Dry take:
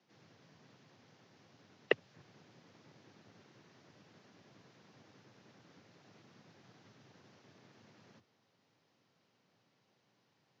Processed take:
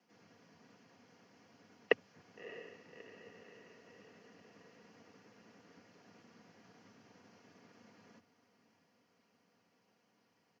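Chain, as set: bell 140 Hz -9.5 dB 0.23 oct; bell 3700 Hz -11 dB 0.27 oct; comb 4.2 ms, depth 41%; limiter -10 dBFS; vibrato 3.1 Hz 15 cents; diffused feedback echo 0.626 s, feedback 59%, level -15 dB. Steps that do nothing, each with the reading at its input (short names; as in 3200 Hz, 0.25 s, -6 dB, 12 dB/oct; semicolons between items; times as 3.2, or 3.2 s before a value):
limiter -10 dBFS: input peak -12.0 dBFS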